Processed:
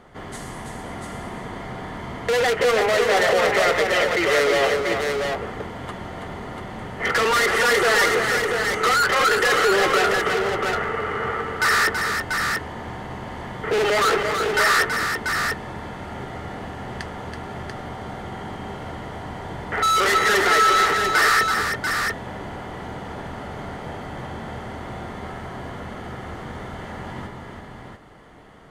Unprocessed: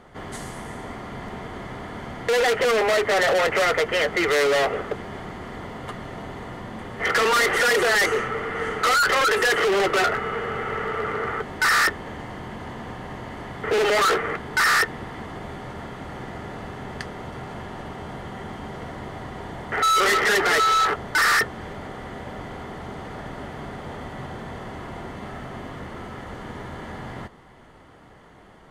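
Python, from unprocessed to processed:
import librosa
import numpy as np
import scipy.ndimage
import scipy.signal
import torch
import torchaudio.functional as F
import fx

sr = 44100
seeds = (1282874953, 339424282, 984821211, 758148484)

y = fx.echo_multitap(x, sr, ms=(328, 689), db=(-6.0, -5.0))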